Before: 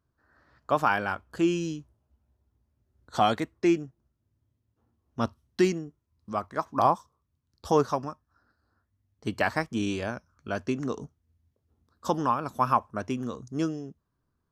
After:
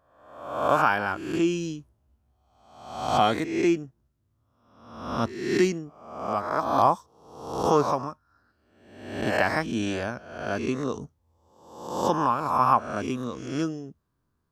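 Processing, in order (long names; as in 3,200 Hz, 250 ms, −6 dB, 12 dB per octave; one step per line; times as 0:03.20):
peak hold with a rise ahead of every peak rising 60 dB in 0.85 s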